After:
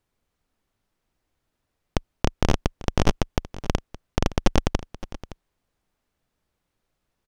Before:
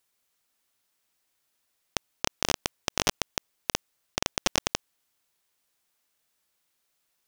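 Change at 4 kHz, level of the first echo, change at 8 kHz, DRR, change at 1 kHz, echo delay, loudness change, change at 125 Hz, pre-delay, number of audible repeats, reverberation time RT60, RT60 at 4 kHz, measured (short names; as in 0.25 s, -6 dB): -5.0 dB, -16.5 dB, -8.0 dB, none, +3.0 dB, 0.567 s, +2.5 dB, +15.5 dB, none, 1, none, none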